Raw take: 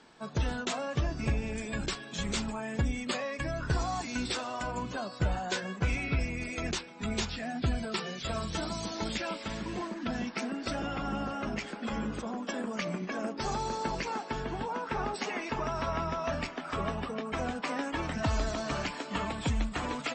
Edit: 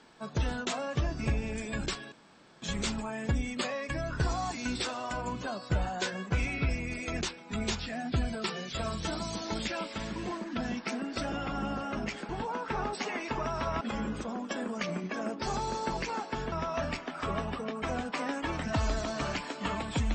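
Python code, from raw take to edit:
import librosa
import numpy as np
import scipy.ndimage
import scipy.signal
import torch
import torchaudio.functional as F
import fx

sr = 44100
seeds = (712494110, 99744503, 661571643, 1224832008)

y = fx.edit(x, sr, fx.insert_room_tone(at_s=2.12, length_s=0.5),
    fx.move(start_s=14.5, length_s=1.52, to_s=11.79), tone=tone)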